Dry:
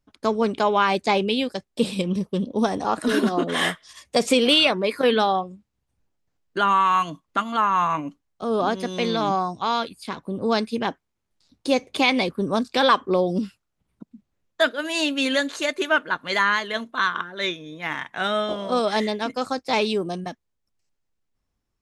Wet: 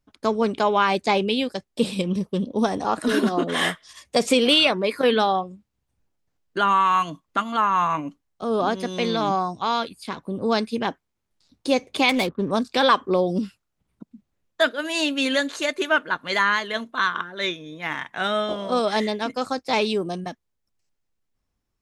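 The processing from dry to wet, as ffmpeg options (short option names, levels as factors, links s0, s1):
-filter_complex "[0:a]asettb=1/sr,asplit=3[s0][s1][s2];[s0]atrim=end=12.094[s3];[s1]atrim=start=12.09:end=12.51,asetpts=PTS-STARTPTS,afade=t=in:d=0.004:c=qsin,afade=t=out:st=0.416:d=0.004:c=qsin,adynamicsmooth=sensitivity=6.5:basefreq=750[s4];[s2]atrim=start=12.506[s5];[s3][s4]acrossfade=d=0.004:c1=hsin:c2=qsin[s6];[s6][s5]acrossfade=d=0.004:c1=qsin:c2=hsin"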